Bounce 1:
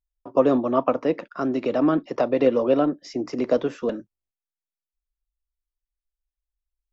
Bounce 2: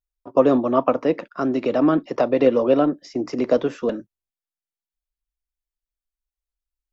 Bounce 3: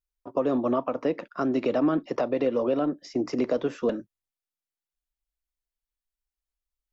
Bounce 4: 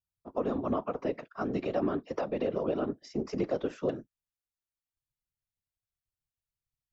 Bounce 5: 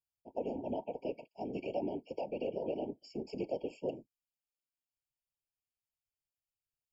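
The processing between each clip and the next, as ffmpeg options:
ffmpeg -i in.wav -af "agate=range=-6dB:threshold=-39dB:ratio=16:detection=peak,volume=2.5dB" out.wav
ffmpeg -i in.wav -af "alimiter=limit=-13dB:level=0:latency=1:release=204,volume=-2dB" out.wav
ffmpeg -i in.wav -af "afftfilt=real='hypot(re,im)*cos(2*PI*random(0))':imag='hypot(re,im)*sin(2*PI*random(1))':win_size=512:overlap=0.75" out.wav
ffmpeg -i in.wav -af "asuperstop=centerf=1200:order=20:qfactor=2.1,lowshelf=frequency=360:gain=-8,afftfilt=real='re*eq(mod(floor(b*sr/1024/1100),2),0)':imag='im*eq(mod(floor(b*sr/1024/1100),2),0)':win_size=1024:overlap=0.75,volume=-3dB" out.wav

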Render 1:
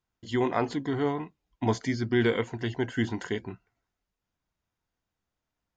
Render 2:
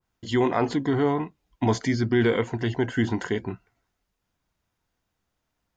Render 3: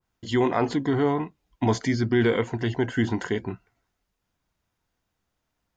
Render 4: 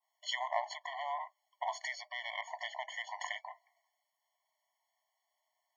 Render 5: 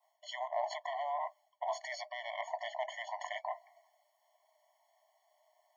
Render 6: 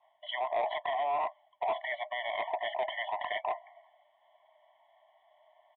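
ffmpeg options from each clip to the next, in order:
ffmpeg -i in.wav -filter_complex "[0:a]asplit=2[link_01][link_02];[link_02]alimiter=limit=-23dB:level=0:latency=1,volume=1.5dB[link_03];[link_01][link_03]amix=inputs=2:normalize=0,adynamicequalizer=threshold=0.01:dfrequency=1900:dqfactor=0.7:tfrequency=1900:tqfactor=0.7:attack=5:release=100:ratio=0.375:range=2:mode=cutabove:tftype=highshelf" out.wav
ffmpeg -i in.wav -af anull out.wav
ffmpeg -i in.wav -af "aeval=exprs='0.355*(cos(1*acos(clip(val(0)/0.355,-1,1)))-cos(1*PI/2))+0.0447*(cos(3*acos(clip(val(0)/0.355,-1,1)))-cos(3*PI/2))':channel_layout=same,acompressor=threshold=-30dB:ratio=10,afftfilt=real='re*eq(mod(floor(b*sr/1024/580),2),1)':imag='im*eq(mod(floor(b*sr/1024/580),2),1)':win_size=1024:overlap=0.75,volume=5dB" out.wav
ffmpeg -i in.wav -af "areverse,acompressor=threshold=-46dB:ratio=8,areverse,highpass=frequency=610:width_type=q:width=4.9,volume=5dB" out.wav
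ffmpeg -i in.wav -af "asoftclip=type=tanh:threshold=-32.5dB,aresample=8000,aresample=44100,volume=8dB" out.wav

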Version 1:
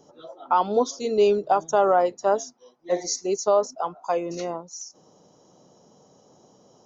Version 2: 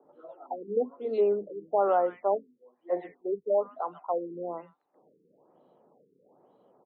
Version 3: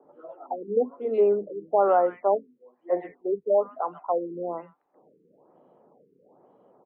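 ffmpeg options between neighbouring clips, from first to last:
ffmpeg -i in.wav -filter_complex "[0:a]acrossover=split=180 3000:gain=0.158 1 0.0794[link_01][link_02][link_03];[link_01][link_02][link_03]amix=inputs=3:normalize=0,acrossover=split=210|1800[link_04][link_05][link_06];[link_04]adelay=40[link_07];[link_06]adelay=130[link_08];[link_07][link_05][link_08]amix=inputs=3:normalize=0,afftfilt=real='re*lt(b*sr/1024,470*pow(4600/470,0.5+0.5*sin(2*PI*1.1*pts/sr)))':imag='im*lt(b*sr/1024,470*pow(4600/470,0.5+0.5*sin(2*PI*1.1*pts/sr)))':win_size=1024:overlap=0.75,volume=-4.5dB" out.wav
ffmpeg -i in.wav -af "lowpass=frequency=2600:width=0.5412,lowpass=frequency=2600:width=1.3066,volume=4dB" out.wav

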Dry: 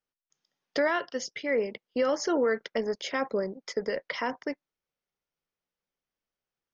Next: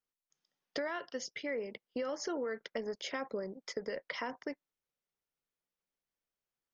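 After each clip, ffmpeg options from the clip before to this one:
ffmpeg -i in.wav -af "acompressor=threshold=-30dB:ratio=4,volume=-4.5dB" out.wav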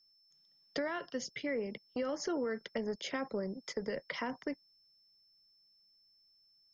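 ffmpeg -i in.wav -filter_complex "[0:a]acrossover=split=230|920[link_01][link_02][link_03];[link_01]aeval=exprs='0.0112*sin(PI/2*2.24*val(0)/0.0112)':channel_layout=same[link_04];[link_04][link_02][link_03]amix=inputs=3:normalize=0,aeval=exprs='val(0)+0.000501*sin(2*PI*5300*n/s)':channel_layout=same" out.wav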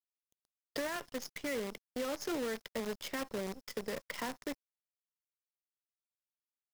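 ffmpeg -i in.wav -af "acrusher=bits=7:dc=4:mix=0:aa=0.000001,volume=-2dB" out.wav

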